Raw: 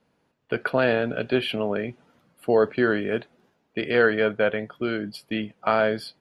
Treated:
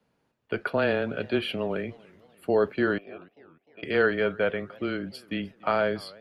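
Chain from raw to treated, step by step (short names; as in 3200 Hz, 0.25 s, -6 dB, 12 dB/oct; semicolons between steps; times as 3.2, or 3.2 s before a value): 2.98–3.83 vowel filter a; frequency shift -13 Hz; warbling echo 0.295 s, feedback 47%, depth 219 cents, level -24 dB; gain -3.5 dB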